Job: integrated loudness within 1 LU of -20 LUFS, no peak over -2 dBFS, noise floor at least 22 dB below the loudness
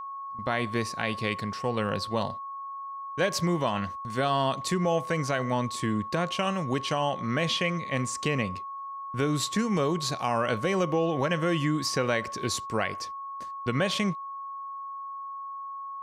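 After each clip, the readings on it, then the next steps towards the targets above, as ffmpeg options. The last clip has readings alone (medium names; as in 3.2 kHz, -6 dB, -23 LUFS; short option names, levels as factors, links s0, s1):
steady tone 1.1 kHz; tone level -35 dBFS; loudness -29.0 LUFS; peak level -13.0 dBFS; loudness target -20.0 LUFS
-> -af "bandreject=f=1100:w=30"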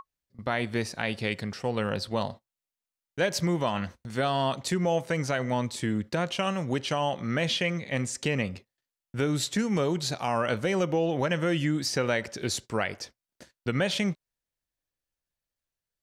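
steady tone not found; loudness -29.0 LUFS; peak level -13.5 dBFS; loudness target -20.0 LUFS
-> -af "volume=2.82"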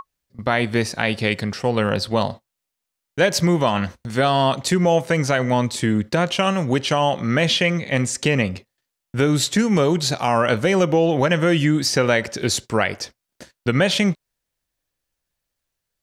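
loudness -20.0 LUFS; peak level -4.5 dBFS; noise floor -82 dBFS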